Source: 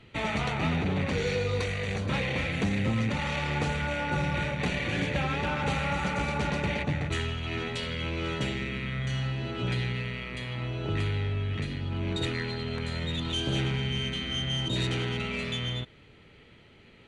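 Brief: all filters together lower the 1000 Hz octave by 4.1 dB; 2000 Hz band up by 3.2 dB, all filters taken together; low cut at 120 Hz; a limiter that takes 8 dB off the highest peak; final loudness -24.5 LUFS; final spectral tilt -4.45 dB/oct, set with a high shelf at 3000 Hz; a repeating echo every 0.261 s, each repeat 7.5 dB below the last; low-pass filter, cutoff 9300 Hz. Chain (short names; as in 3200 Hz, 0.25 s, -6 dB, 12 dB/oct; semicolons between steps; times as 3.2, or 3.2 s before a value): HPF 120 Hz; LPF 9300 Hz; bell 1000 Hz -7.5 dB; bell 2000 Hz +3.5 dB; high shelf 3000 Hz +5.5 dB; limiter -23 dBFS; feedback echo 0.261 s, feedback 42%, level -7.5 dB; gain +6.5 dB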